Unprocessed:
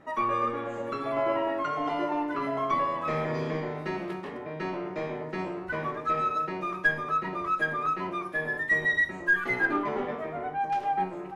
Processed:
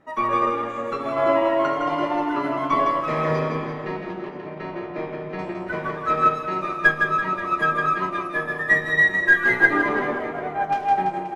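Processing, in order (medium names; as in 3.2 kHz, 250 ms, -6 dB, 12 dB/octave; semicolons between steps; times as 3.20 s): 3.39–5.39 s: distance through air 150 m; reverse bouncing-ball echo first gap 160 ms, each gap 1.1×, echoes 5; upward expansion 1.5:1, over -42 dBFS; trim +8 dB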